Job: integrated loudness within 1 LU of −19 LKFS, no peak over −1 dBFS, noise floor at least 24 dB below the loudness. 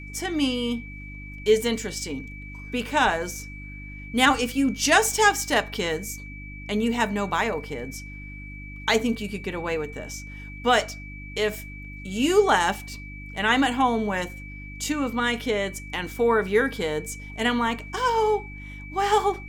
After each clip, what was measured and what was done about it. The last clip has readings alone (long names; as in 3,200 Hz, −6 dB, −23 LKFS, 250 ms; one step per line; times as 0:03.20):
mains hum 50 Hz; hum harmonics up to 300 Hz; level of the hum −38 dBFS; interfering tone 2,300 Hz; level of the tone −41 dBFS; integrated loudness −24.5 LKFS; sample peak −4.0 dBFS; target loudness −19.0 LKFS
→ hum removal 50 Hz, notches 6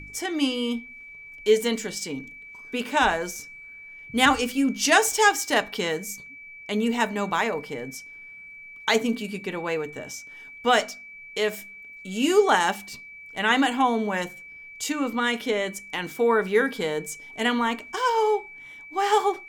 mains hum none found; interfering tone 2,300 Hz; level of the tone −41 dBFS
→ notch filter 2,300 Hz, Q 30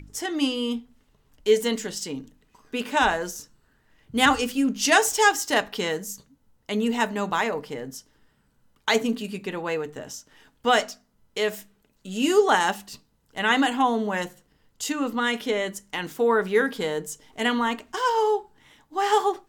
interfering tone none found; integrated loudness −24.5 LKFS; sample peak −4.5 dBFS; target loudness −19.0 LKFS
→ level +5.5 dB
brickwall limiter −1 dBFS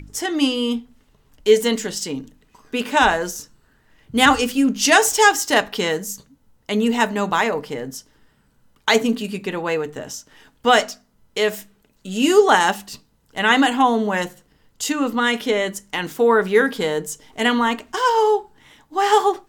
integrated loudness −19.0 LKFS; sample peak −1.0 dBFS; background noise floor −61 dBFS